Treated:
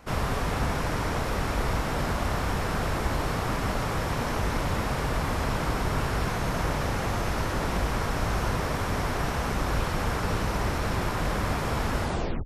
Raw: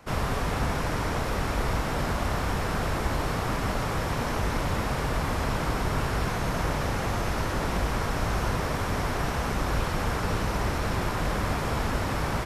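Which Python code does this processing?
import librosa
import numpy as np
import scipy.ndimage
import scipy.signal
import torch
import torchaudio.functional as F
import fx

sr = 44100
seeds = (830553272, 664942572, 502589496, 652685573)

y = fx.tape_stop_end(x, sr, length_s=0.45)
y = fx.dmg_buzz(y, sr, base_hz=60.0, harmonics=30, level_db=-57.0, tilt_db=-9, odd_only=False)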